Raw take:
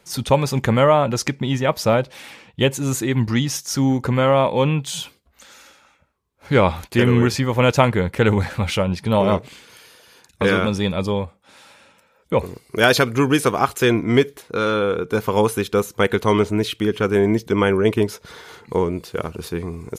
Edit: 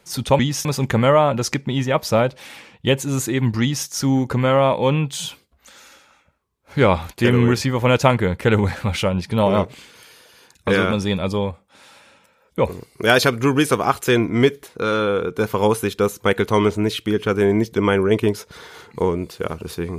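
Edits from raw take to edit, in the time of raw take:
3.35–3.61 copy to 0.39

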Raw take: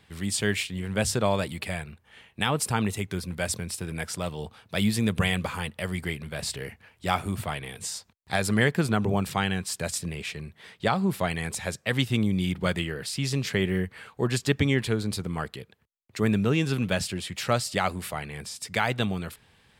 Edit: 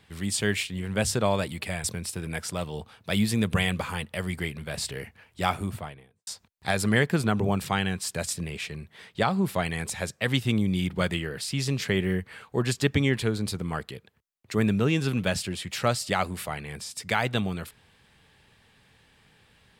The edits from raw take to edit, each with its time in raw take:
1.84–3.49 cut
7.14–7.92 studio fade out

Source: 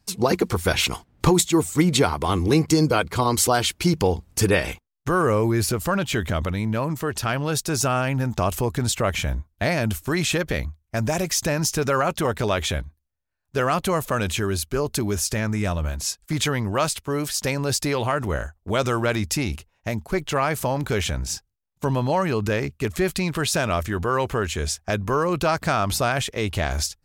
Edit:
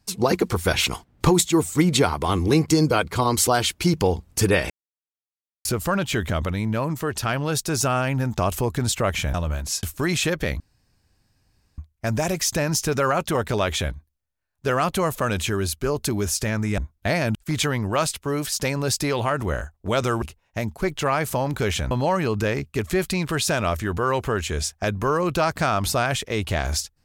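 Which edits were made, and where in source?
4.7–5.65 mute
9.34–9.91 swap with 15.68–16.17
10.68 insert room tone 1.18 s
19.04–19.52 cut
21.21–21.97 cut

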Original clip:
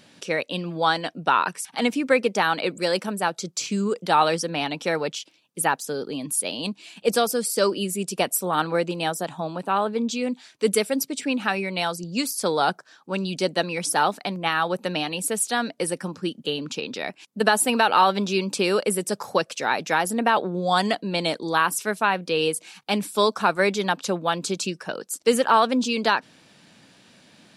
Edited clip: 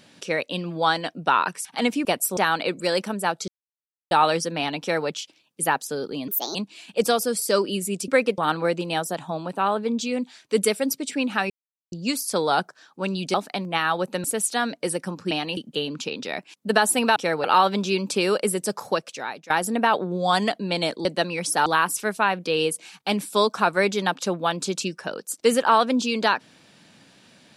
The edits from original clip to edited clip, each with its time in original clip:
2.05–2.35 swap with 8.16–8.48
3.46–4.09 mute
4.78–5.06 copy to 17.87
6.26–6.63 speed 137%
11.6–12.02 mute
13.44–14.05 move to 21.48
14.95–15.21 move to 16.28
19.22–19.93 fade out, to -20.5 dB

